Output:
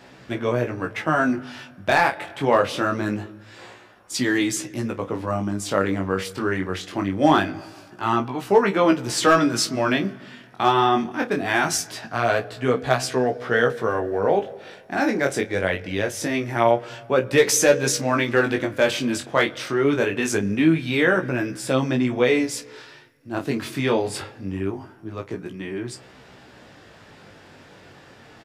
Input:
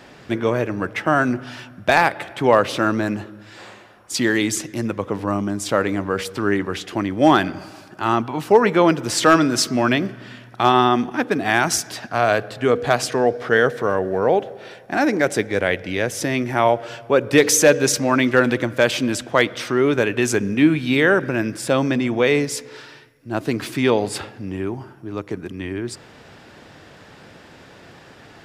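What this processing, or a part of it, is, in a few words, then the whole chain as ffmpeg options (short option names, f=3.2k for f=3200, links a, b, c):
double-tracked vocal: -filter_complex "[0:a]asplit=2[a][b];[b]adelay=31,volume=-13dB[c];[a][c]amix=inputs=2:normalize=0,flanger=delay=15.5:depth=6.3:speed=0.23"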